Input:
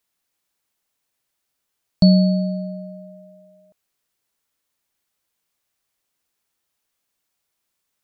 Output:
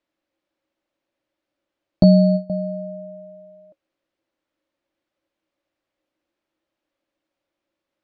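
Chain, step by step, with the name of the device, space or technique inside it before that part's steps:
inside a cardboard box (low-pass filter 3,200 Hz 12 dB per octave; hollow resonant body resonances 320/550 Hz, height 17 dB, ringing for 65 ms)
0:02.03–0:02.50: noise gate with hold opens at −5 dBFS
level −1.5 dB

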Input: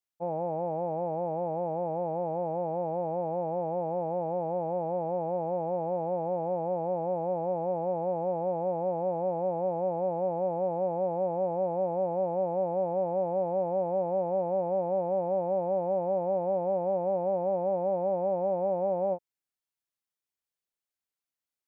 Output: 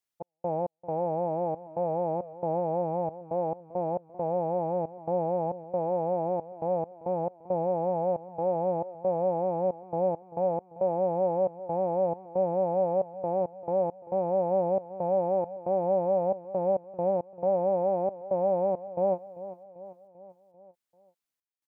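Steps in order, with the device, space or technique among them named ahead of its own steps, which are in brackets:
trance gate with a delay (gate pattern "x.x.xxx.xx.xxx." 68 BPM −60 dB; repeating echo 392 ms, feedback 56%, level −16 dB)
level +2.5 dB

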